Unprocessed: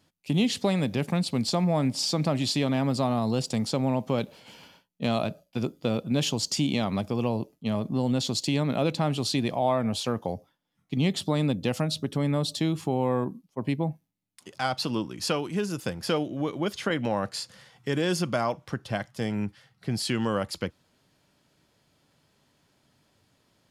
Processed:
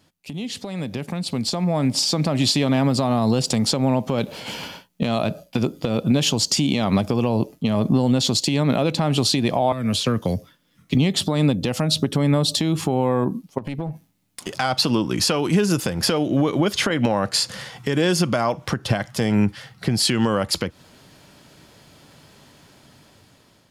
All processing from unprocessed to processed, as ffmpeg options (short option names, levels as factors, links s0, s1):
-filter_complex "[0:a]asettb=1/sr,asplit=3[s0][s1][s2];[s0]atrim=end=9.724[s3];[s1]atrim=start=9.72:end=10.95,asetpts=PTS-STARTPTS,afade=t=in:d=0.004:c=qsin,afade=t=out:st=1.226:d=0.004:c=qsin,acrossover=split=230|1000|3900[s4][s5][s6][s7];[s4]acompressor=threshold=0.0112:ratio=3[s8];[s5]acompressor=threshold=0.00708:ratio=3[s9];[s6]acompressor=threshold=0.00501:ratio=3[s10];[s7]acompressor=threshold=0.00355:ratio=3[s11];[s8][s9][s10][s11]amix=inputs=4:normalize=0,equalizer=f=810:t=o:w=0.48:g=-12[s12];[s2]atrim=start=10.946[s13];[s3][s12]acrossfade=d=0.004:c1=hsin:c2=qsin[s14];[s14][s13]acrossfade=d=0.004:c1=qsin:c2=hsin,asettb=1/sr,asplit=3[s15][s16][s17];[s15]atrim=end=13.584[s18];[s16]atrim=start=13.58:end=14.5,asetpts=PTS-STARTPTS,afade=t=in:d=0.004:c=qsin,afade=t=out:st=0.916:d=0.004:c=qsin,acompressor=threshold=0.0112:ratio=16:attack=3.2:release=140:knee=1:detection=peak,aeval=exprs='clip(val(0),-1,0.00668)':c=same[s19];[s17]atrim=start=14.496[s20];[s18][s19]acrossfade=d=0.004:c1=hsin:c2=qsin[s21];[s21][s20]acrossfade=d=0.004:c1=qsin:c2=hsin,acompressor=threshold=0.0282:ratio=6,alimiter=level_in=1.33:limit=0.0631:level=0:latency=1:release=177,volume=0.75,dynaudnorm=f=620:g=5:m=3.55,volume=2.11"